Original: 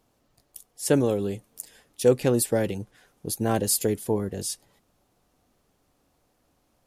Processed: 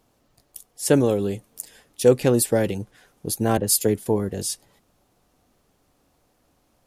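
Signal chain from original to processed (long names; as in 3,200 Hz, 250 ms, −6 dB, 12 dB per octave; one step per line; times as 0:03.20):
0:03.57–0:04.06: multiband upward and downward expander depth 70%
level +3.5 dB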